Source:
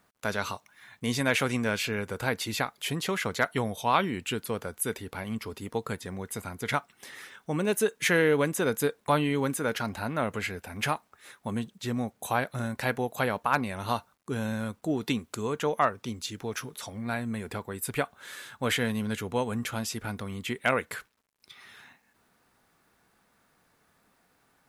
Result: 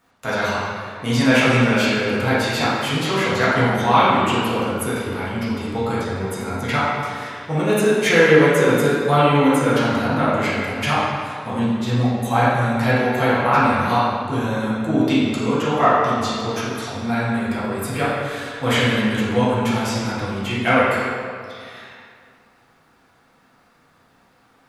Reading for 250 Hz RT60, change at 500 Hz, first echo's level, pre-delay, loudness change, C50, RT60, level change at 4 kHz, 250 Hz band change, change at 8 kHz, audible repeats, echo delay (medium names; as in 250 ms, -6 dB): 2.2 s, +11.0 dB, no echo, 4 ms, +11.0 dB, -3.0 dB, 2.2 s, +9.5 dB, +12.0 dB, +4.0 dB, no echo, no echo